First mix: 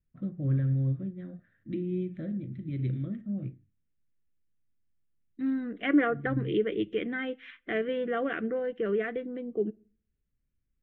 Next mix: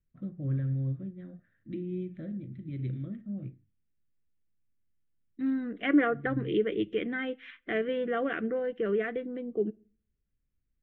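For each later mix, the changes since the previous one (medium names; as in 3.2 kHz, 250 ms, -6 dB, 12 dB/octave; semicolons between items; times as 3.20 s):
first voice -3.5 dB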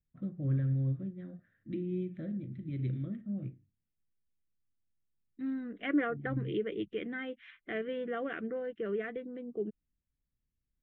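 second voice -5.5 dB; reverb: off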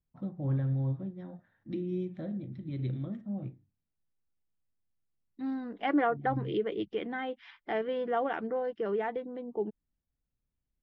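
master: remove static phaser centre 2.1 kHz, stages 4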